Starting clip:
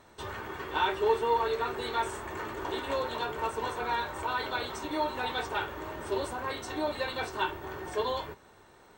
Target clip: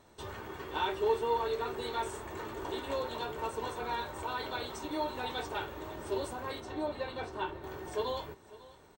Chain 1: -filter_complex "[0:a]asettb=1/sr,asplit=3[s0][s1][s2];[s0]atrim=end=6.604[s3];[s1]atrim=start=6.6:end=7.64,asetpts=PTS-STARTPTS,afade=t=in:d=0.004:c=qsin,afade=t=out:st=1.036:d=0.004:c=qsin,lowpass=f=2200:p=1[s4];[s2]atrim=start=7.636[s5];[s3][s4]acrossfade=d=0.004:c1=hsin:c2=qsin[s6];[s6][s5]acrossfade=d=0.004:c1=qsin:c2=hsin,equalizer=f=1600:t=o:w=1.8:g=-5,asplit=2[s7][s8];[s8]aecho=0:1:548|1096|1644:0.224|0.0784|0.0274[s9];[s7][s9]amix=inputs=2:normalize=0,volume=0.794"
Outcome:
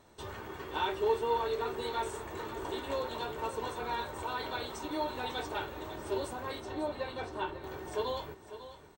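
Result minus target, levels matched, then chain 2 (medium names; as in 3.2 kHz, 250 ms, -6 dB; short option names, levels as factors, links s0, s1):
echo-to-direct +6.5 dB
-filter_complex "[0:a]asettb=1/sr,asplit=3[s0][s1][s2];[s0]atrim=end=6.604[s3];[s1]atrim=start=6.6:end=7.64,asetpts=PTS-STARTPTS,afade=t=in:d=0.004:c=qsin,afade=t=out:st=1.036:d=0.004:c=qsin,lowpass=f=2200:p=1[s4];[s2]atrim=start=7.636[s5];[s3][s4]acrossfade=d=0.004:c1=hsin:c2=qsin[s6];[s6][s5]acrossfade=d=0.004:c1=qsin:c2=hsin,equalizer=f=1600:t=o:w=1.8:g=-5,asplit=2[s7][s8];[s8]aecho=0:1:548|1096|1644:0.106|0.0371|0.013[s9];[s7][s9]amix=inputs=2:normalize=0,volume=0.794"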